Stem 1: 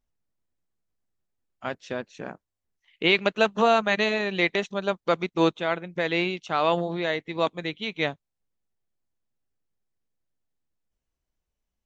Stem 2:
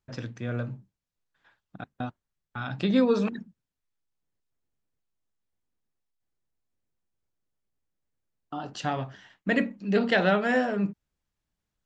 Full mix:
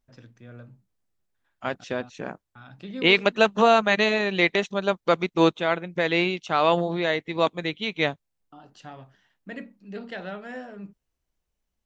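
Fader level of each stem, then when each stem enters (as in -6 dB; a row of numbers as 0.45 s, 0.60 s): +2.5 dB, -13.0 dB; 0.00 s, 0.00 s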